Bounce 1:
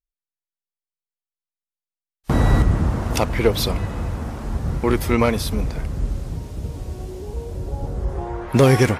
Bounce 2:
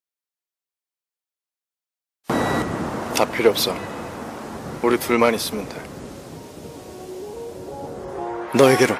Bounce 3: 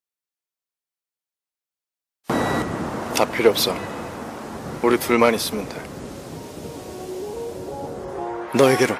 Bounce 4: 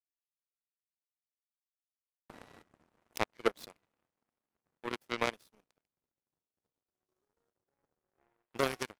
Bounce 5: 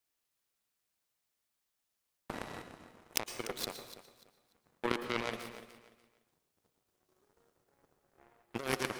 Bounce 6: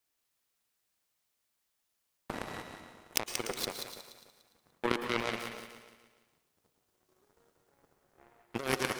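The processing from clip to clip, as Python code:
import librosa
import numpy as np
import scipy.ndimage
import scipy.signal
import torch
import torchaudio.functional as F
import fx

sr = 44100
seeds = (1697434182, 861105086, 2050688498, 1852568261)

y1 = scipy.signal.sosfilt(scipy.signal.butter(2, 280.0, 'highpass', fs=sr, output='sos'), x)
y1 = y1 * 10.0 ** (3.0 / 20.0)
y2 = fx.rider(y1, sr, range_db=4, speed_s=2.0)
y2 = y2 * 10.0 ** (-1.0 / 20.0)
y3 = fx.power_curve(y2, sr, exponent=3.0)
y3 = y3 * 10.0 ** (-7.0 / 20.0)
y4 = fx.over_compress(y3, sr, threshold_db=-41.0, ratio=-1.0)
y4 = fx.echo_feedback(y4, sr, ms=293, feedback_pct=26, wet_db=-14.0)
y4 = fx.rev_plate(y4, sr, seeds[0], rt60_s=0.63, hf_ratio=0.9, predelay_ms=100, drr_db=10.0)
y4 = y4 * 10.0 ** (5.0 / 20.0)
y5 = fx.echo_thinned(y4, sr, ms=182, feedback_pct=28, hz=980.0, wet_db=-6)
y5 = y5 * 10.0 ** (2.5 / 20.0)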